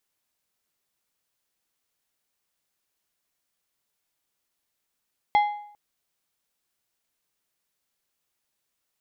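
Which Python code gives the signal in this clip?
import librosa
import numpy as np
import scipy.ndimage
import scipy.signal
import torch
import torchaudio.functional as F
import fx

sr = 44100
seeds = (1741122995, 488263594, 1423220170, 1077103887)

y = fx.strike_metal(sr, length_s=0.4, level_db=-14.0, body='plate', hz=830.0, decay_s=0.64, tilt_db=10, modes=5)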